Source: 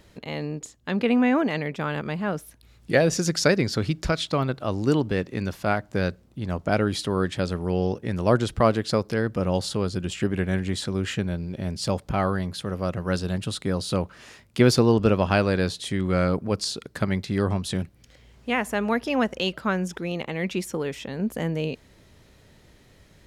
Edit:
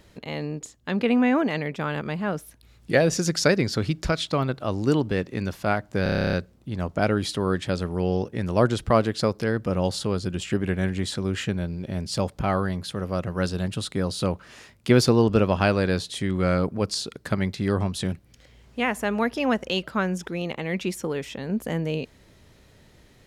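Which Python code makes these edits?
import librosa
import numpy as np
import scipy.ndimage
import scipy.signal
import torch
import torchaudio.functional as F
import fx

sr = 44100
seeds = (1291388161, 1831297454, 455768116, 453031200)

y = fx.edit(x, sr, fx.stutter(start_s=6.03, slice_s=0.03, count=11), tone=tone)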